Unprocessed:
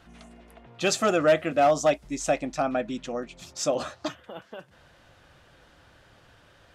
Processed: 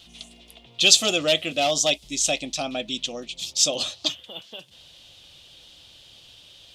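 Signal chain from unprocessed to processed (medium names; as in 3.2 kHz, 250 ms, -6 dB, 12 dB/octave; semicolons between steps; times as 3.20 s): resonant high shelf 2.3 kHz +13 dB, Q 3; trim -2.5 dB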